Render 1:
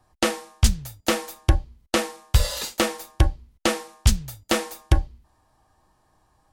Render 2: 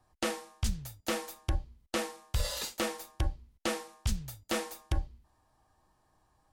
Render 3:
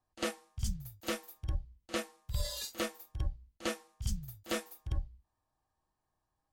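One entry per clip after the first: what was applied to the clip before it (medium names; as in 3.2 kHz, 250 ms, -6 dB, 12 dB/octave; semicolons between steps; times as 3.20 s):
peak limiter -14 dBFS, peak gain reduction 9.5 dB; trim -6.5 dB
reverse echo 51 ms -8.5 dB; spectral noise reduction 12 dB; trim -2.5 dB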